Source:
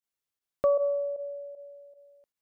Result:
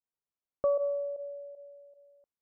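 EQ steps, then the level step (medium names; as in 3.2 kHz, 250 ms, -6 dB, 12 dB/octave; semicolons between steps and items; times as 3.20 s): low-pass 1.3 kHz 24 dB/octave; -3.5 dB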